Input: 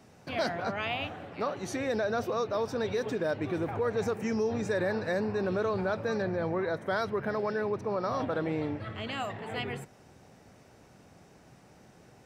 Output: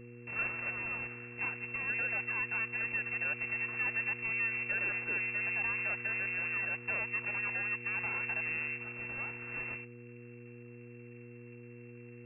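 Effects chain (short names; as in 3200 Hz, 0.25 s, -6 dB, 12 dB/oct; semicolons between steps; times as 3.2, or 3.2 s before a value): full-wave rectifier; inverted band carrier 2700 Hz; buzz 120 Hz, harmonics 4, -44 dBFS -2 dB/oct; gain -6.5 dB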